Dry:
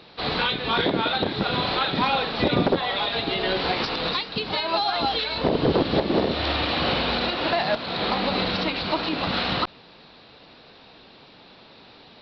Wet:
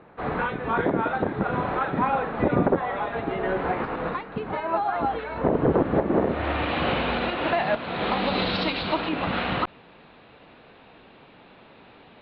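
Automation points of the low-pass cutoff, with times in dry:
low-pass 24 dB/octave
6.17 s 1.8 kHz
6.75 s 2.8 kHz
7.96 s 2.8 kHz
8.65 s 4.9 kHz
9.12 s 2.8 kHz

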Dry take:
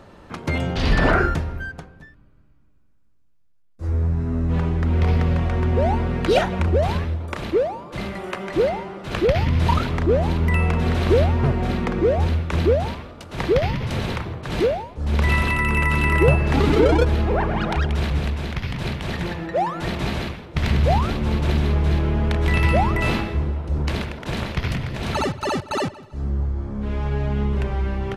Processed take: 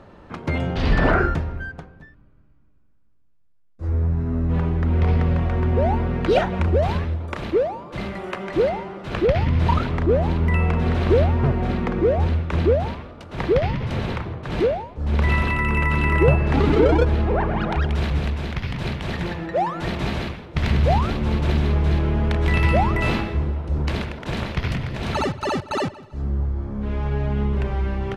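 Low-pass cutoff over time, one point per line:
low-pass 6 dB/octave
2.6 kHz
from 6.54 s 4.3 kHz
from 9.11 s 2.7 kHz
from 17.84 s 5.9 kHz
from 26.22 s 3.8 kHz
from 27.65 s 6.3 kHz

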